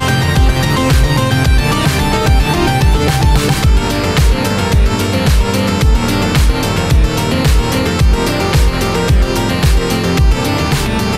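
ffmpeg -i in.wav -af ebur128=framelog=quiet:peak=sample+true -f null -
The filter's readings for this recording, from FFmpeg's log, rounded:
Integrated loudness:
  I:         -12.7 LUFS
  Threshold: -22.7 LUFS
Loudness range:
  LRA:         1.1 LU
  Threshold: -32.7 LUFS
  LRA low:   -13.1 LUFS
  LRA high:  -12.0 LUFS
Sample peak:
  Peak:       -1.5 dBFS
True peak:
  Peak:       -1.3 dBFS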